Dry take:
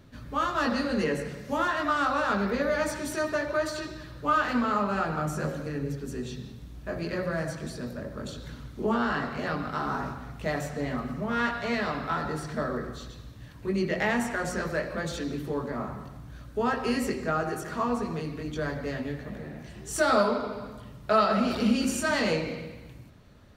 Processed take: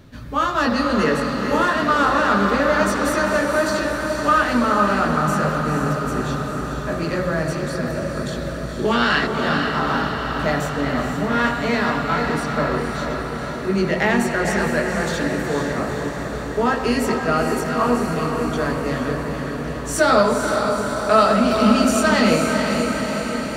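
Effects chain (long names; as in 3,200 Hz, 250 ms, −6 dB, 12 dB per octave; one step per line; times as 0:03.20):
0:08.85–0:09.27: meter weighting curve D
feedback delay with all-pass diffusion 479 ms, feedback 69%, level −5 dB
level +7.5 dB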